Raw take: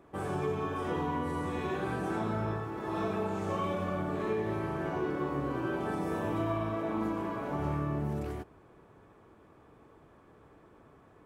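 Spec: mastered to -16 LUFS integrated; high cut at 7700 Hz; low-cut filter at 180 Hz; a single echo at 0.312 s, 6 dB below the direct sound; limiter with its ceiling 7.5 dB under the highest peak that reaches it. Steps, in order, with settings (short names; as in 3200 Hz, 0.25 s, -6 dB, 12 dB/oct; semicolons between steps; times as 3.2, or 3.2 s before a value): HPF 180 Hz; LPF 7700 Hz; limiter -28.5 dBFS; echo 0.312 s -6 dB; gain +20.5 dB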